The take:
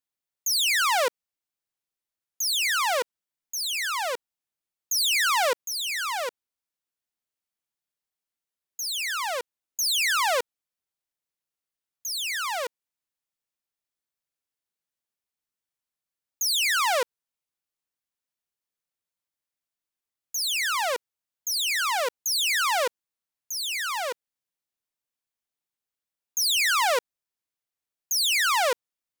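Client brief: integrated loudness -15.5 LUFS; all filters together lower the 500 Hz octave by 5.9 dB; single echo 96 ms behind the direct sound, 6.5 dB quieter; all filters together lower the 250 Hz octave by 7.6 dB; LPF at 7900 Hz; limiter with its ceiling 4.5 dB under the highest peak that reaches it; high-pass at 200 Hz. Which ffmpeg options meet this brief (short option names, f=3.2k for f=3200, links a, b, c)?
-af "highpass=200,lowpass=7.9k,equalizer=f=250:t=o:g=-7,equalizer=f=500:t=o:g=-6,alimiter=limit=-18.5dB:level=0:latency=1,aecho=1:1:96:0.473,volume=10dB"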